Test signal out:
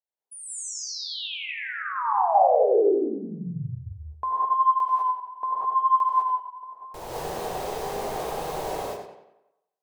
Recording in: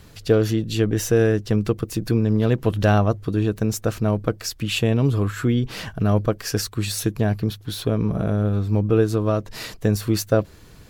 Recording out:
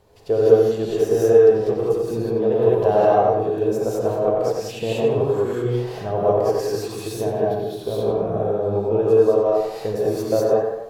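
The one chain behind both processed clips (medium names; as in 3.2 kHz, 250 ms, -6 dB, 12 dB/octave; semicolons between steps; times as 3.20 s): high-order bell 610 Hz +14 dB; on a send: tape echo 91 ms, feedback 51%, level -4 dB, low-pass 3.9 kHz; on the sum: gated-style reverb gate 230 ms rising, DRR -6.5 dB; trim -15.5 dB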